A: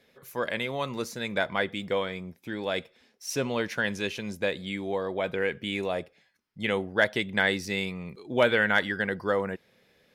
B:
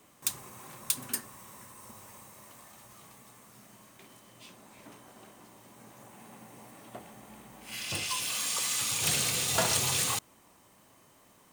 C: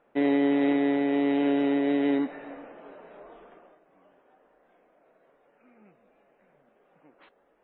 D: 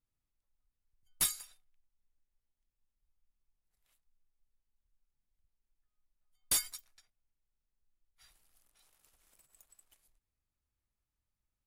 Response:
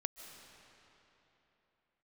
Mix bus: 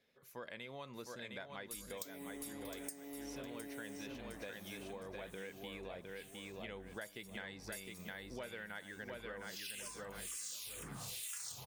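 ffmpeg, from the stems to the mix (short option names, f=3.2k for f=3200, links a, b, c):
-filter_complex "[0:a]equalizer=f=13k:w=0.39:g=-7.5,volume=-14dB,asplit=3[a][b][c];[b]volume=-4.5dB[d];[1:a]aeval=exprs='val(0)+0.00447*(sin(2*PI*50*n/s)+sin(2*PI*2*50*n/s)/2+sin(2*PI*3*50*n/s)/3+sin(2*PI*4*50*n/s)/4+sin(2*PI*5*50*n/s)/5)':c=same,acrossover=split=1400[e][f];[e]aeval=exprs='val(0)*(1-1/2+1/2*cos(2*PI*1.2*n/s))':c=same[g];[f]aeval=exprs='val(0)*(1-1/2-1/2*cos(2*PI*1.2*n/s))':c=same[h];[g][h]amix=inputs=2:normalize=0,asplit=2[i][j];[j]afreqshift=-2[k];[i][k]amix=inputs=2:normalize=1,adelay=1750,volume=-3dB,asplit=2[l][m];[m]volume=-13.5dB[n];[2:a]alimiter=level_in=1.5dB:limit=-24dB:level=0:latency=1,volume=-1.5dB,adelay=1900,volume=-10.5dB[o];[3:a]adelay=500,volume=-7dB,asplit=2[p][q];[q]volume=-9.5dB[r];[c]apad=whole_len=536317[s];[p][s]sidechaincompress=threshold=-46dB:ratio=8:attack=5.4:release=390[t];[d][n][r]amix=inputs=3:normalize=0,aecho=0:1:710|1420|2130|2840|3550:1|0.32|0.102|0.0328|0.0105[u];[a][l][o][t][u]amix=inputs=5:normalize=0,highshelf=f=4.3k:g=8.5,acompressor=threshold=-44dB:ratio=6"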